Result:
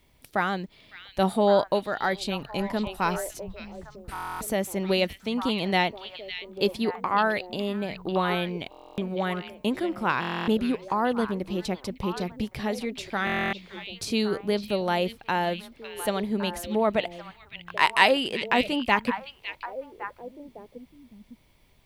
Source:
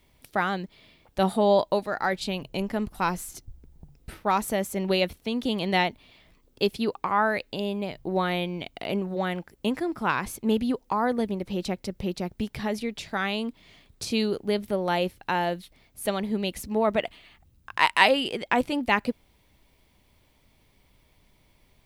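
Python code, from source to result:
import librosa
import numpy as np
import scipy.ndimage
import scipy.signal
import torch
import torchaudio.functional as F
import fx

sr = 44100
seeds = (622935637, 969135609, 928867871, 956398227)

p1 = x + fx.echo_stepped(x, sr, ms=557, hz=3100.0, octaves=-1.4, feedback_pct=70, wet_db=-6.0, dry=0)
y = fx.buffer_glitch(p1, sr, at_s=(4.13, 8.7, 10.2, 13.25), block=1024, repeats=11)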